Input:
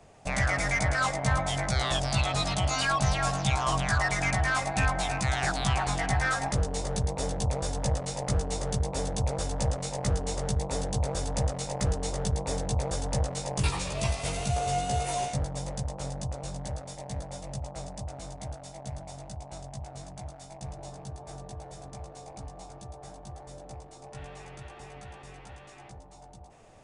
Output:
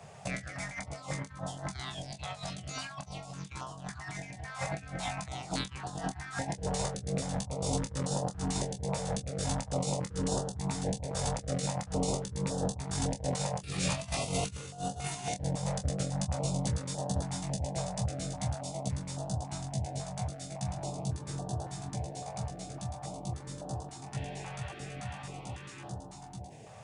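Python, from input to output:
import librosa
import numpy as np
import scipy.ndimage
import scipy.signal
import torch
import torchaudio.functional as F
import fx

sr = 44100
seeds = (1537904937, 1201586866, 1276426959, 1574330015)

y = scipy.signal.sosfilt(scipy.signal.butter(2, 100.0, 'highpass', fs=sr, output='sos'), x)
y = fx.peak_eq(y, sr, hz=130.0, db=6.5, octaves=1.2)
y = fx.over_compress(y, sr, threshold_db=-33.0, ratio=-0.5)
y = fx.doubler(y, sr, ms=26.0, db=-7.5)
y = fx.filter_held_notch(y, sr, hz=3.6, low_hz=300.0, high_hz=2200.0)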